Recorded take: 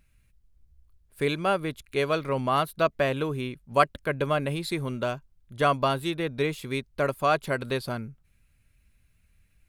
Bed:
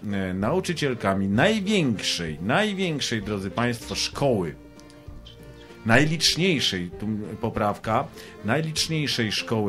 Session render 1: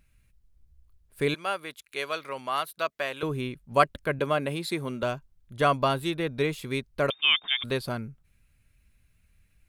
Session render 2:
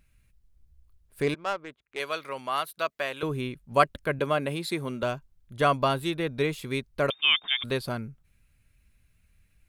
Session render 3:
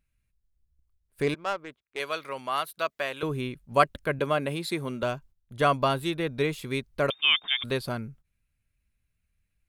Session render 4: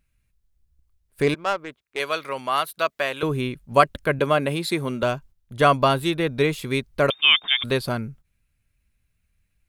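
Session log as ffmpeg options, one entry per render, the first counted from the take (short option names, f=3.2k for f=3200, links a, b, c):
-filter_complex "[0:a]asettb=1/sr,asplit=3[a][b][c];[a]atrim=end=1.344[d];[b]atrim=start=1.34:end=3.23,asetpts=PTS-STARTPTS,afade=t=in:d=0.004:c=qsin,afade=t=out:st=1.886:d=0.004:c=qsin,highpass=f=1.3k:p=1[e];[c]atrim=start=3.226[f];[d][e]acrossfade=d=0.004:c1=hsin:c2=qsin[g];[g][f]acrossfade=d=0.004:c1=qsin:c2=hsin,asettb=1/sr,asplit=3[h][i][j];[h]atrim=end=4.194[k];[i]atrim=start=4.19:end=5.03,asetpts=PTS-STARTPTS,afade=t=in:d=0.004:c=qsin,afade=t=out:st=0.836:d=0.004:c=qsin,highpass=160[l];[j]atrim=start=5.026[m];[k][l]acrossfade=d=0.004:c1=hsin:c2=qsin[n];[n][m]acrossfade=d=0.004:c1=qsin:c2=hsin,asettb=1/sr,asplit=3[o][p][q];[o]atrim=end=7.104[r];[p]atrim=start=7.1:end=7.64,asetpts=PTS-STARTPTS,afade=t=in:d=0.004:c=qsin,afade=t=out:st=0.536:d=0.004:c=qsin,lowpass=f=3.1k:t=q:w=0.5098,lowpass=f=3.1k:t=q:w=0.6013,lowpass=f=3.1k:t=q:w=0.9,lowpass=f=3.1k:t=q:w=2.563,afreqshift=-3700[s];[q]atrim=start=7.636[t];[r][s]acrossfade=d=0.004:c1=hsin:c2=qsin[u];[u][t]acrossfade=d=0.004:c1=qsin:c2=hsin"
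-filter_complex "[0:a]asettb=1/sr,asplit=3[a][b][c];[a]atrim=end=1.224[d];[b]atrim=start=1.22:end=2,asetpts=PTS-STARTPTS,afade=t=in:d=0.004:c=qsin,afade=t=out:st=0.776:d=0.004:c=qsin,adynamicsmooth=sensitivity=2.5:basefreq=890[e];[c]atrim=start=1.996[f];[d][e]acrossfade=d=0.004:c1=hsin:c2=qsin[g];[g][f]acrossfade=d=0.004:c1=qsin:c2=hsin"
-af "agate=range=-12dB:threshold=-50dB:ratio=16:detection=peak"
-af "volume=6dB,alimiter=limit=-3dB:level=0:latency=1"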